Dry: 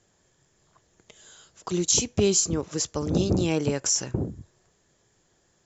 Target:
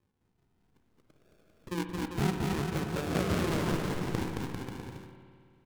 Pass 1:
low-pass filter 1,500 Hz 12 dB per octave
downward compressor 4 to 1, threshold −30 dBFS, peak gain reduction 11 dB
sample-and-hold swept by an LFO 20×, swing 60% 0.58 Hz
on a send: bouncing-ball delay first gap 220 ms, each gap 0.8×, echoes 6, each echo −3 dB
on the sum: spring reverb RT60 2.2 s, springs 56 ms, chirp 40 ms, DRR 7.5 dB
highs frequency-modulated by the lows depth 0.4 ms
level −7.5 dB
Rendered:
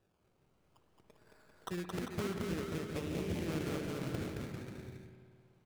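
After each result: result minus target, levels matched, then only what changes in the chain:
downward compressor: peak gain reduction +11 dB; sample-and-hold swept by an LFO: distortion −16 dB
remove: downward compressor 4 to 1, threshold −30 dBFS, peak gain reduction 11 dB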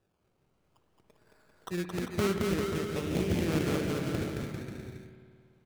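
sample-and-hold swept by an LFO: distortion −15 dB
change: sample-and-hold swept by an LFO 62×, swing 60% 0.58 Hz

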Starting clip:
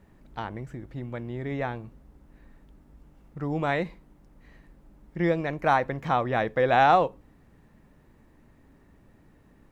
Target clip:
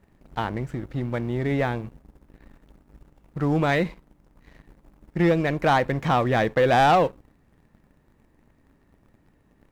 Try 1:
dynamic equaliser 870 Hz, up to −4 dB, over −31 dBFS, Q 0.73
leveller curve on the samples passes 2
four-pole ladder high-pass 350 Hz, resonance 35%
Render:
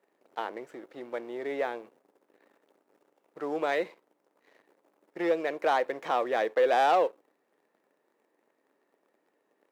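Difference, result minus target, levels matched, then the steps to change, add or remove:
250 Hz band −7.0 dB
remove: four-pole ladder high-pass 350 Hz, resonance 35%

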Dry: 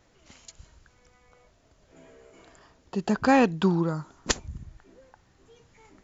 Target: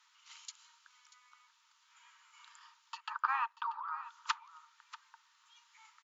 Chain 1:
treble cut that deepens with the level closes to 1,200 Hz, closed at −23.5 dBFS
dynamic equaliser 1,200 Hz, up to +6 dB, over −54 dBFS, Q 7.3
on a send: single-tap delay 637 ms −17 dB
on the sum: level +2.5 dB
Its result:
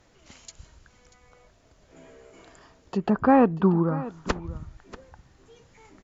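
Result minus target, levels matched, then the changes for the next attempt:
1,000 Hz band −6.5 dB
add after dynamic equaliser: Chebyshev high-pass with heavy ripple 890 Hz, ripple 6 dB

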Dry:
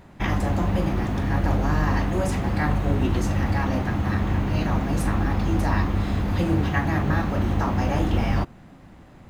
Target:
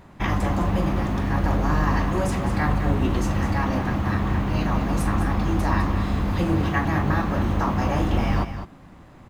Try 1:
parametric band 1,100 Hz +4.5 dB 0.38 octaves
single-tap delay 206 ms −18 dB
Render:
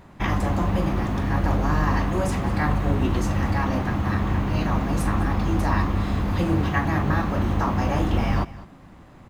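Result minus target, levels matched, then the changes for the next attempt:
echo-to-direct −8 dB
change: single-tap delay 206 ms −10 dB

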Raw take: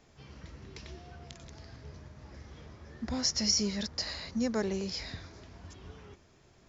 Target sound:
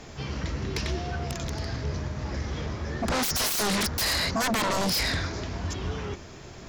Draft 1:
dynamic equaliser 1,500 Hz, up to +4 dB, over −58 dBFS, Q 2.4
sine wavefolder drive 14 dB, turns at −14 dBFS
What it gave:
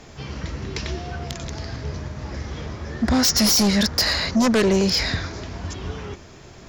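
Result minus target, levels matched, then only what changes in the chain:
sine wavefolder: distortion −15 dB
change: sine wavefolder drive 14 dB, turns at −22.5 dBFS

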